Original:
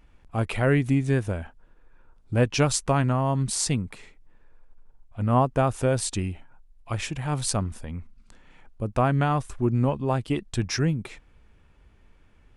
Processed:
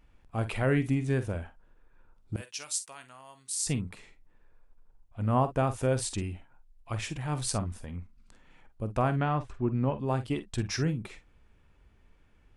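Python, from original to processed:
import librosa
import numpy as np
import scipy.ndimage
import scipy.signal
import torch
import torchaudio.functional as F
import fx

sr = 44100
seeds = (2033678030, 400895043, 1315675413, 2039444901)

p1 = fx.differentiator(x, sr, at=(2.36, 3.67))
p2 = fx.lowpass(p1, sr, hz=3700.0, slope=12, at=(9.16, 9.98))
p3 = p2 + fx.room_early_taps(p2, sr, ms=(46, 56), db=(-12.5, -18.0), dry=0)
y = p3 * 10.0 ** (-5.0 / 20.0)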